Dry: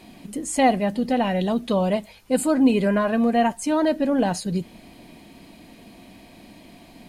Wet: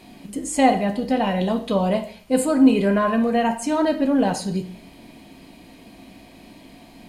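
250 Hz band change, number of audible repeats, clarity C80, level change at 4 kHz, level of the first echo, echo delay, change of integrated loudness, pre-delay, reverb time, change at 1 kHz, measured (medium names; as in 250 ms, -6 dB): +1.5 dB, no echo, 14.5 dB, +1.0 dB, no echo, no echo, +1.5 dB, 6 ms, 0.50 s, +1.5 dB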